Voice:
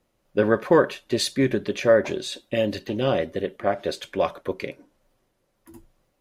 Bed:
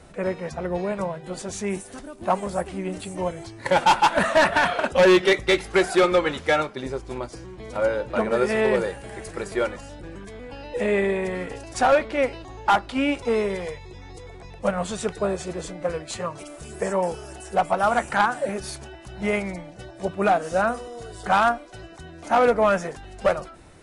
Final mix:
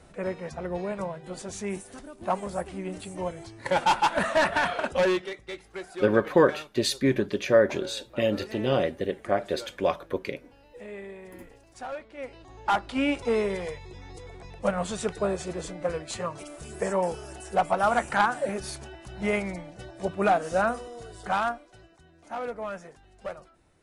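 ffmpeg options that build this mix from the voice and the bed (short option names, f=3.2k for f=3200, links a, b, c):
-filter_complex "[0:a]adelay=5650,volume=-2dB[a];[1:a]volume=11dB,afade=t=out:st=4.93:d=0.37:silence=0.211349,afade=t=in:st=12.16:d=0.87:silence=0.158489,afade=t=out:st=20.63:d=1.35:silence=0.223872[b];[a][b]amix=inputs=2:normalize=0"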